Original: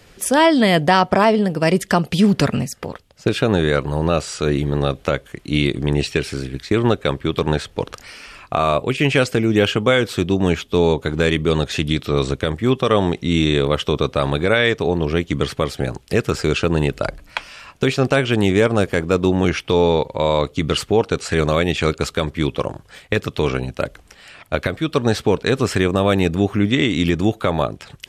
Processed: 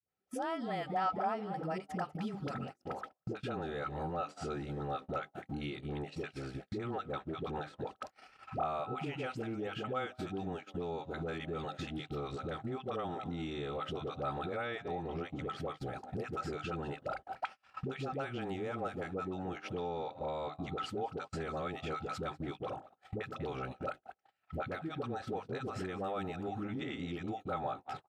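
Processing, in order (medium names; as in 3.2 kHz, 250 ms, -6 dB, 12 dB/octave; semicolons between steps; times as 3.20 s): high-pass 73 Hz 12 dB/octave; hum notches 50/100/150/200/250/300 Hz; phase dispersion highs, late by 87 ms, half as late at 450 Hz; on a send: frequency-shifting echo 196 ms, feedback 33%, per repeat +120 Hz, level -18 dB; on the sum: compression 5:1, threshold -31 dBFS, peak gain reduction 19.5 dB; treble shelf 4.7 kHz -10.5 dB; small resonant body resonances 780/1300 Hz, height 15 dB, ringing for 55 ms; gate -35 dBFS, range -37 dB; trim -7.5 dB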